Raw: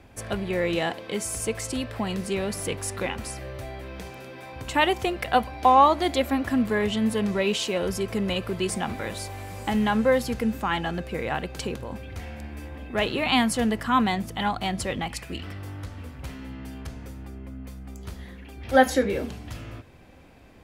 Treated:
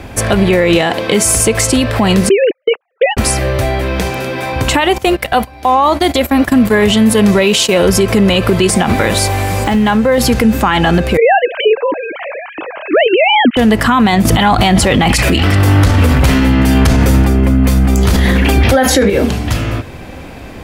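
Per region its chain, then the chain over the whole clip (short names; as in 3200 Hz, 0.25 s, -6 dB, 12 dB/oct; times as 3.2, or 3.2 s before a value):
2.29–3.17 sine-wave speech + gate -34 dBFS, range -46 dB
4.98–7.85 gate -31 dBFS, range -18 dB + high shelf 8200 Hz +7.5 dB
9.64–10.18 median filter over 5 samples + compressor 3:1, threshold -33 dBFS
11.17–13.57 sine-wave speech + air absorption 99 m
14.25–19.1 echo 0.376 s -23.5 dB + fast leveller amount 70%
whole clip: compressor 2.5:1, threshold -26 dBFS; maximiser +23 dB; gain -1 dB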